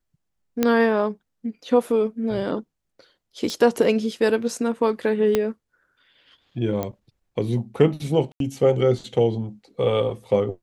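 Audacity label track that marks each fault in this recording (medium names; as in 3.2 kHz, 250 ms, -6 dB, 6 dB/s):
0.630000	0.630000	pop -6 dBFS
3.500000	3.500000	pop -15 dBFS
5.350000	5.350000	pop -7 dBFS
6.830000	6.830000	pop -13 dBFS
8.320000	8.400000	dropout 82 ms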